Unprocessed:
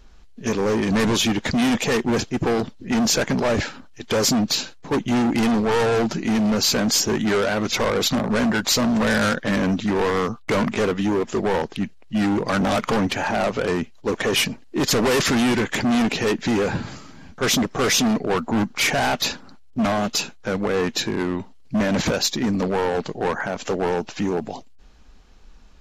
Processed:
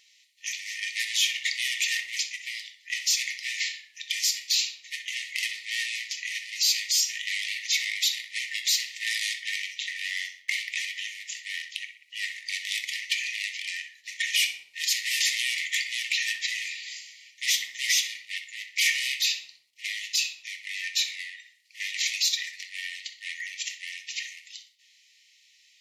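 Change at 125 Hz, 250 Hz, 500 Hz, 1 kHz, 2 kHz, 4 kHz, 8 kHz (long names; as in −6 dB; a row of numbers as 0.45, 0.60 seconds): below −40 dB, below −40 dB, below −40 dB, below −40 dB, −2.0 dB, −0.5 dB, −2.0 dB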